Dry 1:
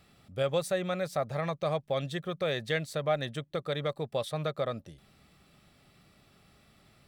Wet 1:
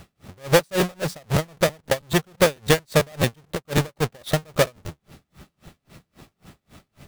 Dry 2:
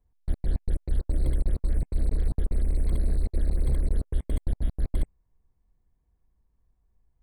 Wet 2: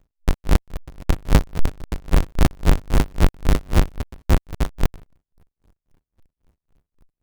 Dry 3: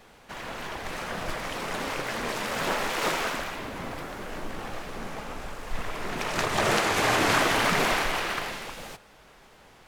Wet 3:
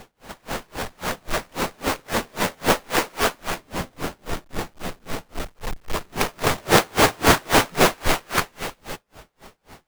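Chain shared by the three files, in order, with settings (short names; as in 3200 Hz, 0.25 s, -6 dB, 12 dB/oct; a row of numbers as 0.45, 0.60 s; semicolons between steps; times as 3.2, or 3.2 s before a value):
half-waves squared off; crackling interface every 0.11 s, samples 512, repeat, from 0.57; dB-linear tremolo 3.7 Hz, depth 35 dB; match loudness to -23 LUFS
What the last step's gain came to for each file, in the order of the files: +12.0, +8.5, +7.5 dB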